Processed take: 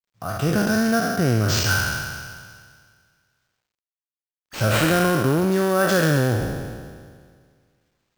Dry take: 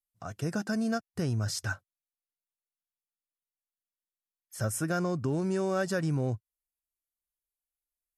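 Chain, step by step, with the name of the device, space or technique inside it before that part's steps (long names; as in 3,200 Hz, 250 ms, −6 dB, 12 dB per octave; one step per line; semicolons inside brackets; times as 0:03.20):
peak hold with a decay on every bin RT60 1.87 s
early companding sampler (sample-rate reduction 11,000 Hz, jitter 0%; log-companded quantiser 8 bits)
level +8.5 dB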